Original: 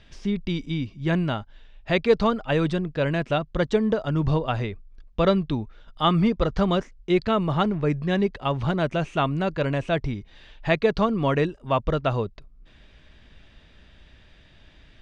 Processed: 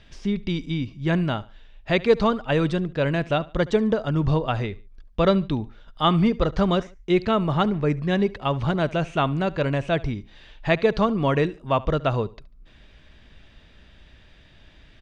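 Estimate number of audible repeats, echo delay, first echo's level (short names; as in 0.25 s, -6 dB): 2, 72 ms, -21.0 dB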